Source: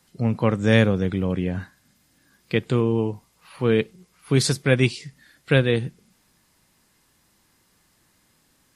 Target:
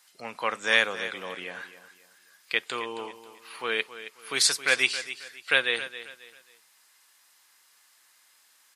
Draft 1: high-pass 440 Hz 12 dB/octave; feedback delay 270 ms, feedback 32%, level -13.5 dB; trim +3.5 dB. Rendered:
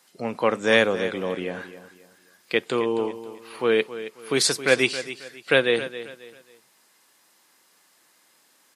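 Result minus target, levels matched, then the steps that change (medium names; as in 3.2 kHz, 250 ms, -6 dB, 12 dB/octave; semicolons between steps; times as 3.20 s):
500 Hz band +9.0 dB
change: high-pass 1.1 kHz 12 dB/octave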